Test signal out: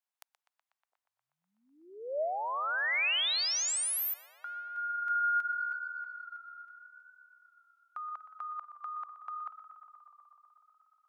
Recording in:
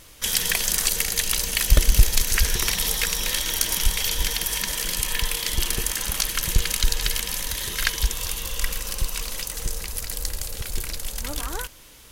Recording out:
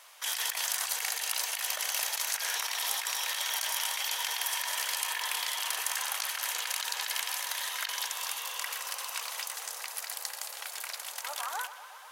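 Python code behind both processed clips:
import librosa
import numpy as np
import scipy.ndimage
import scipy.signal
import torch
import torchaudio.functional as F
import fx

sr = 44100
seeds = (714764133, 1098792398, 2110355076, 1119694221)

p1 = scipy.signal.sosfilt(scipy.signal.butter(6, 720.0, 'highpass', fs=sr, output='sos'), x)
p2 = fx.tilt_eq(p1, sr, slope=-4.0)
p3 = fx.over_compress(p2, sr, threshold_db=-35.0, ratio=-1.0)
p4 = fx.high_shelf(p3, sr, hz=7000.0, db=7.5)
y = p4 + fx.echo_tape(p4, sr, ms=122, feedback_pct=87, wet_db=-13, lp_hz=4100.0, drive_db=11.0, wow_cents=30, dry=0)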